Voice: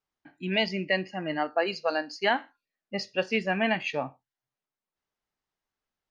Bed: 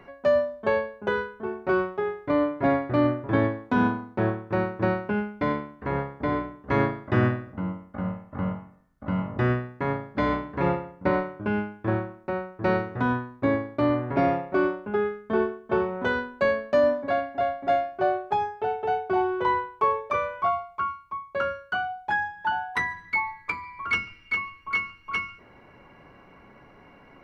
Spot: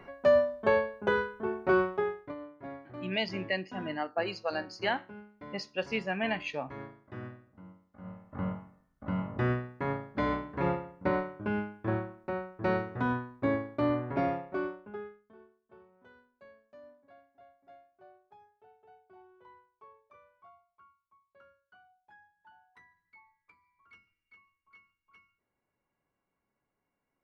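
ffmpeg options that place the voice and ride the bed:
-filter_complex "[0:a]adelay=2600,volume=-5.5dB[a];[1:a]volume=14dB,afade=t=out:st=1.97:d=0.38:silence=0.105925,afade=t=in:st=7.98:d=0.43:silence=0.16788,afade=t=out:st=13.96:d=1.38:silence=0.0421697[b];[a][b]amix=inputs=2:normalize=0"

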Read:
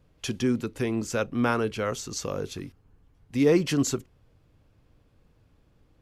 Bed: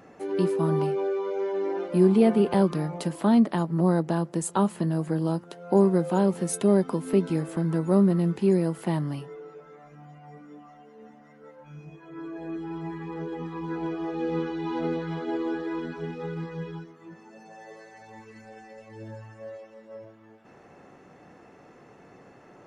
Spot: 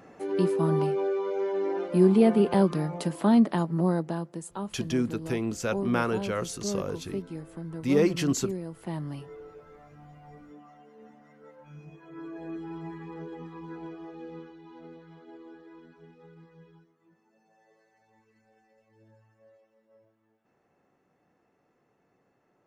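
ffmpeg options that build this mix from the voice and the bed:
-filter_complex "[0:a]adelay=4500,volume=-2dB[a];[1:a]volume=8.5dB,afade=t=out:st=3.57:d=0.92:silence=0.266073,afade=t=in:st=8.69:d=0.65:silence=0.354813,afade=t=out:st=12.48:d=2.14:silence=0.158489[b];[a][b]amix=inputs=2:normalize=0"

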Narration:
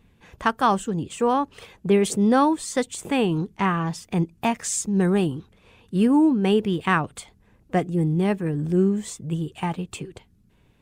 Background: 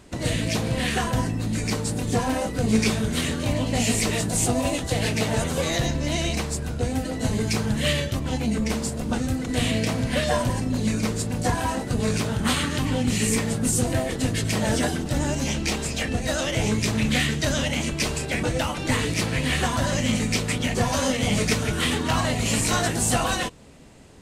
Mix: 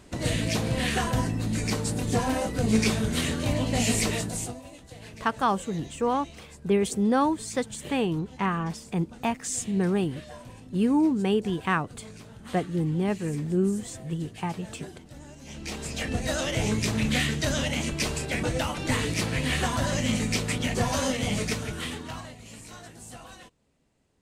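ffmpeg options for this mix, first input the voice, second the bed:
-filter_complex "[0:a]adelay=4800,volume=-4.5dB[a];[1:a]volume=16dB,afade=t=out:st=4.03:d=0.57:silence=0.112202,afade=t=in:st=15.43:d=0.73:silence=0.125893,afade=t=out:st=20.97:d=1.4:silence=0.112202[b];[a][b]amix=inputs=2:normalize=0"

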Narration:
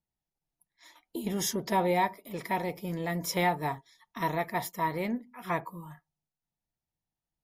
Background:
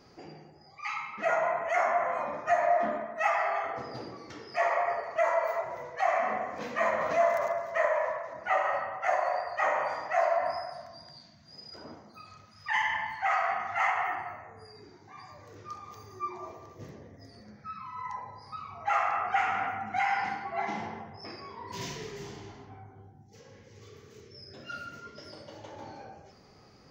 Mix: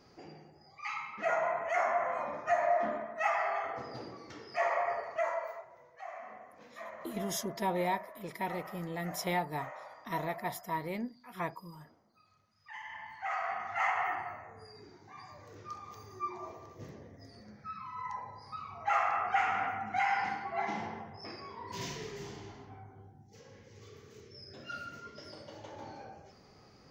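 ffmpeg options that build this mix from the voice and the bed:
-filter_complex "[0:a]adelay=5900,volume=-5.5dB[a];[1:a]volume=12.5dB,afade=t=out:st=5.03:d=0.64:silence=0.188365,afade=t=in:st=12.82:d=1.26:silence=0.158489[b];[a][b]amix=inputs=2:normalize=0"

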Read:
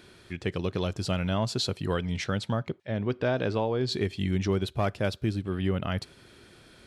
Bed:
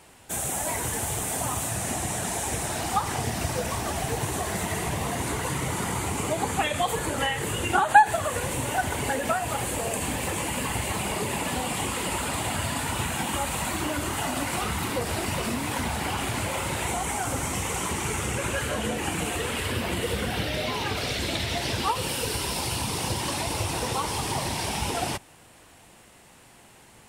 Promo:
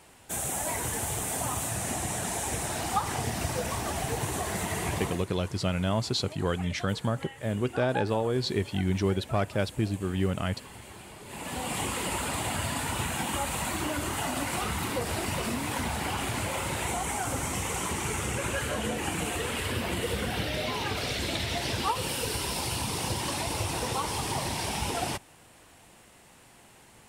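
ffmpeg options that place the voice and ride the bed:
-filter_complex "[0:a]adelay=4550,volume=0dB[a];[1:a]volume=13.5dB,afade=t=out:st=4.98:d=0.28:silence=0.158489,afade=t=in:st=11.24:d=0.52:silence=0.158489[b];[a][b]amix=inputs=2:normalize=0"

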